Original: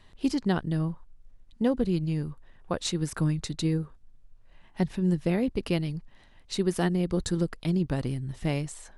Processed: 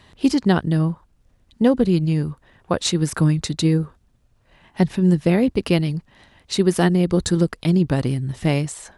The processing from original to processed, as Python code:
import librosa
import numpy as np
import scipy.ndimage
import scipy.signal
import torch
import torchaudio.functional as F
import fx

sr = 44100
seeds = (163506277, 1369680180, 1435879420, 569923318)

y = scipy.signal.sosfilt(scipy.signal.butter(2, 57.0, 'highpass', fs=sr, output='sos'), x)
y = F.gain(torch.from_numpy(y), 9.0).numpy()